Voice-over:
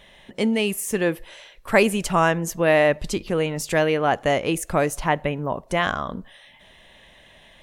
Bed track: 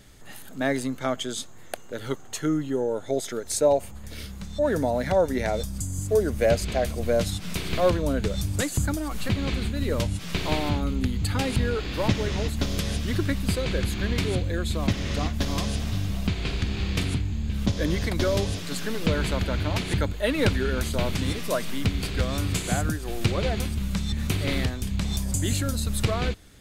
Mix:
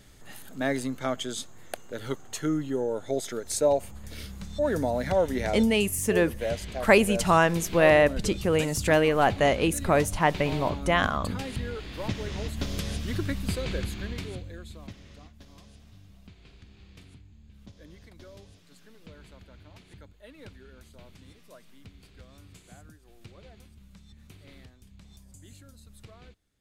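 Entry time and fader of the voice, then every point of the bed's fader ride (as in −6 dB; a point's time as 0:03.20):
5.15 s, −1.5 dB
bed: 0:05.54 −2.5 dB
0:05.79 −9 dB
0:11.97 −9 dB
0:12.73 −4.5 dB
0:13.75 −4.5 dB
0:15.35 −25 dB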